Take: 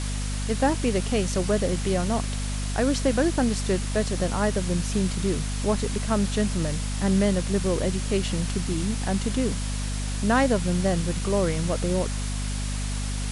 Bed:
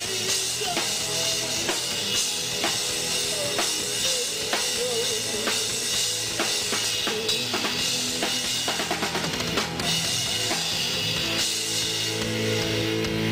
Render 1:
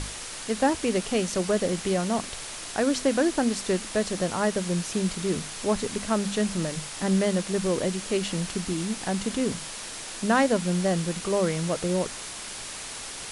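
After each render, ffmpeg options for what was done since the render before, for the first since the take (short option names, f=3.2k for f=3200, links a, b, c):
-af "bandreject=f=50:t=h:w=6,bandreject=f=100:t=h:w=6,bandreject=f=150:t=h:w=6,bandreject=f=200:t=h:w=6,bandreject=f=250:t=h:w=6"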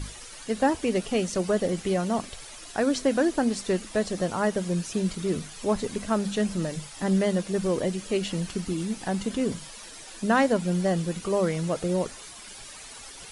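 -af "afftdn=nr=11:nf=-38"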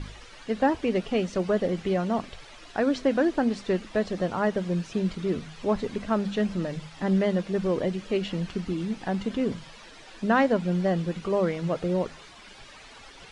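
-af "lowpass=3.6k,bandreject=f=52.87:t=h:w=4,bandreject=f=105.74:t=h:w=4,bandreject=f=158.61:t=h:w=4"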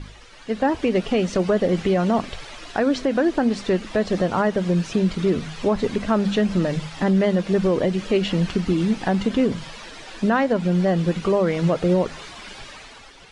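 -af "dynaudnorm=f=150:g=9:m=10dB,alimiter=limit=-11dB:level=0:latency=1:release=157"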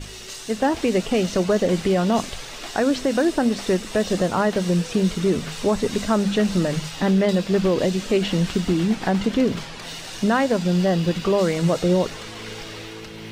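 -filter_complex "[1:a]volume=-12dB[a];[0:a][a]amix=inputs=2:normalize=0"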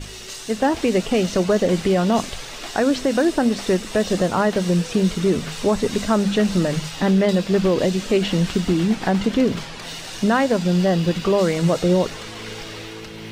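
-af "volume=1.5dB"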